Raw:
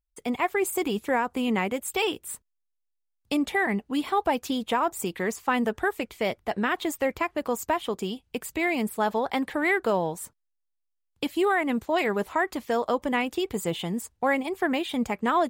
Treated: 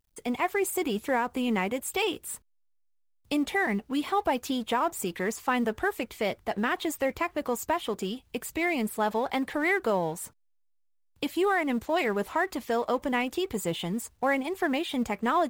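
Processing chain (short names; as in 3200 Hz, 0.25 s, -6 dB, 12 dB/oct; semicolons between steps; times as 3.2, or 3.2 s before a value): G.711 law mismatch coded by mu; gain -2.5 dB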